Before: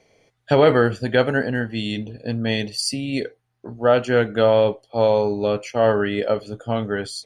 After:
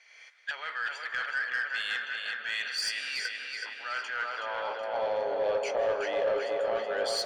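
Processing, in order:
camcorder AGC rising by 42 dB per second
low-pass filter 8,500 Hz 12 dB per octave
reversed playback
downward compressor 16 to 1, threshold −26 dBFS, peak gain reduction 18 dB
reversed playback
feedback echo with a low-pass in the loop 373 ms, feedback 69%, low-pass 4,900 Hz, level −4 dB
high-pass filter sweep 1,600 Hz → 550 Hz, 0:03.86–0:05.33
on a send at −10 dB: convolution reverb RT60 2.9 s, pre-delay 139 ms
on the sum: mid-hump overdrive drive 13 dB, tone 6,500 Hz, clips at −12.5 dBFS
level −7.5 dB

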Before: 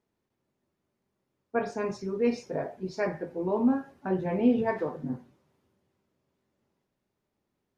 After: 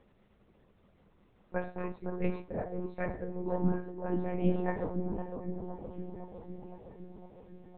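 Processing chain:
upward compression, threshold −42 dBFS
bucket-brigade delay 510 ms, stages 4,096, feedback 68%, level −7 dB
one-pitch LPC vocoder at 8 kHz 180 Hz
parametric band 200 Hz +7.5 dB 0.2 octaves
delay with a high-pass on its return 744 ms, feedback 73%, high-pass 2,400 Hz, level −19 dB
level −6 dB

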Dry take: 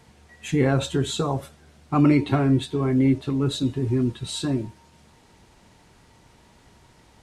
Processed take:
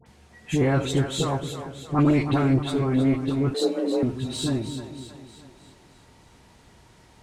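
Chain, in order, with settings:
one-sided soft clipper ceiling −19.5 dBFS
all-pass dispersion highs, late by 62 ms, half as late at 1,400 Hz
on a send: echo with a time of its own for lows and highs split 430 Hz, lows 232 ms, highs 313 ms, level −9.5 dB
0:03.54–0:04.03: on the sum: frequency shifter +170 Hz

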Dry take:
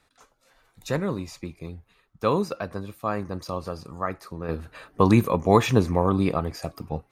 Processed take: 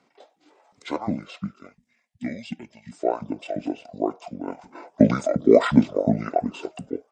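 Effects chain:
gain on a spectral selection 0:01.73–0:02.92, 440–2,900 Hz −19 dB
auto-filter high-pass saw up 2.8 Hz 320–1,500 Hz
pitch shifter −10 semitones
level +1.5 dB

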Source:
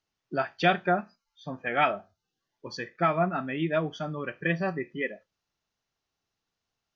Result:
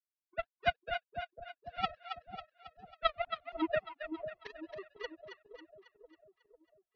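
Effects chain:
three sine waves on the formant tracks
low-pass filter 1,600 Hz 12 dB per octave
power curve on the samples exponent 3
on a send: echo with a time of its own for lows and highs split 690 Hz, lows 498 ms, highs 273 ms, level −7.5 dB

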